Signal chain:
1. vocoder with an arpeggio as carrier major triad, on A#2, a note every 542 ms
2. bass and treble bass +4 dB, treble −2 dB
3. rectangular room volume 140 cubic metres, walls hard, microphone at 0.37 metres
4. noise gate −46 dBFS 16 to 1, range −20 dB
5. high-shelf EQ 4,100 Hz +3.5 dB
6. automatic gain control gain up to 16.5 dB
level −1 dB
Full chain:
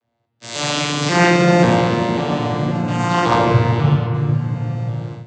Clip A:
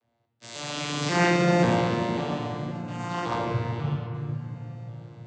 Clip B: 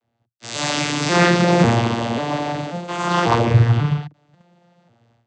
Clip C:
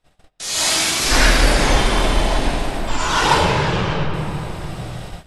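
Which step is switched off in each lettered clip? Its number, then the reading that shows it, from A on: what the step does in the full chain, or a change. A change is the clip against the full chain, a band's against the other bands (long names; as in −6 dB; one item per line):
6, change in crest factor +2.0 dB
3, change in momentary loudness spread +1 LU
1, 8 kHz band +11.0 dB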